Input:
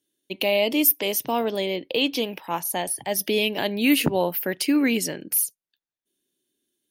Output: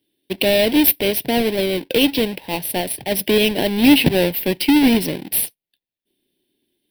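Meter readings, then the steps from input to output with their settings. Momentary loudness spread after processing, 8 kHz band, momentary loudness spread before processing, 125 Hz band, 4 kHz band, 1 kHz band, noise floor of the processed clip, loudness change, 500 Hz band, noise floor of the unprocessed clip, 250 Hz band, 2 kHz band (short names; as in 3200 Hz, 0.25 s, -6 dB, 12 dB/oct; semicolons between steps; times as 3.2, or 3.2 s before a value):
9 LU, +1.0 dB, 8 LU, +9.0 dB, +6.0 dB, +2.0 dB, under -85 dBFS, +6.0 dB, +6.0 dB, under -85 dBFS, +8.0 dB, +5.0 dB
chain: half-waves squared off; fixed phaser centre 3000 Hz, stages 4; gain +4 dB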